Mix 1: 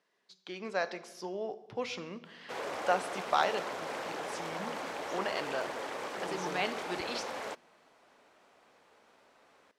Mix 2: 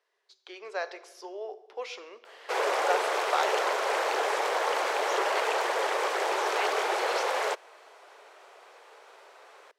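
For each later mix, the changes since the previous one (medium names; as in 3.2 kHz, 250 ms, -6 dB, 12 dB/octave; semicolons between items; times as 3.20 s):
background +11.5 dB; master: add elliptic high-pass 390 Hz, stop band 80 dB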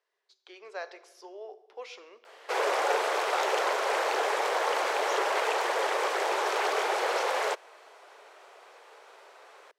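speech -5.0 dB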